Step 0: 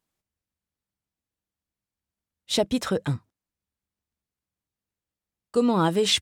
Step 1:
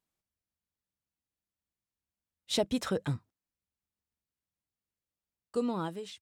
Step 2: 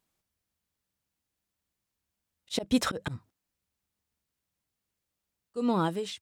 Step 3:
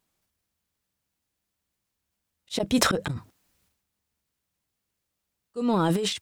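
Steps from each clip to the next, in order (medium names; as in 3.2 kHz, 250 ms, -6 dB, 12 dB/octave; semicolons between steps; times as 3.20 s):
fade out at the end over 0.90 s; trim -6 dB
slow attack 176 ms; trim +7.5 dB
transient shaper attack -2 dB, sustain +12 dB; trim +3 dB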